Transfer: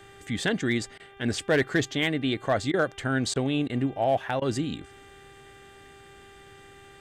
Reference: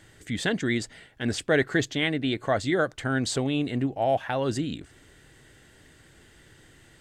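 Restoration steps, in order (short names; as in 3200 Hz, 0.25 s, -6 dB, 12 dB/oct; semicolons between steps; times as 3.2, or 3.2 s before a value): clip repair -15.5 dBFS; de-hum 395.7 Hz, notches 9; interpolate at 0.98/2.72/3.34/3.68/4.4, 16 ms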